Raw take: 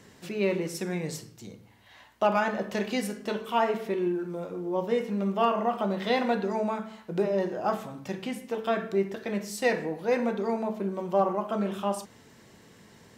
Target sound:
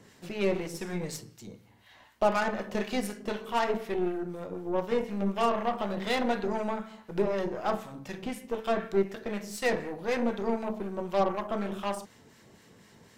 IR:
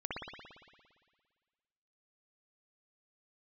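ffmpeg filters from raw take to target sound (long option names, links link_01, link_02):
-filter_complex "[0:a]aeval=exprs='0.211*(cos(1*acos(clip(val(0)/0.211,-1,1)))-cos(1*PI/2))+0.0168*(cos(8*acos(clip(val(0)/0.211,-1,1)))-cos(8*PI/2))':channel_layout=same,acrossover=split=1100[link_01][link_02];[link_01]aeval=exprs='val(0)*(1-0.5/2+0.5/2*cos(2*PI*4*n/s))':channel_layout=same[link_03];[link_02]aeval=exprs='val(0)*(1-0.5/2-0.5/2*cos(2*PI*4*n/s))':channel_layout=same[link_04];[link_03][link_04]amix=inputs=2:normalize=0"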